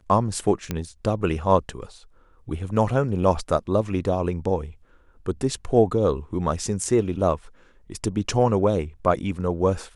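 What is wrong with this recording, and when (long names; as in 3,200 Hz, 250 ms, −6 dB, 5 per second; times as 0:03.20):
0:00.71: click −12 dBFS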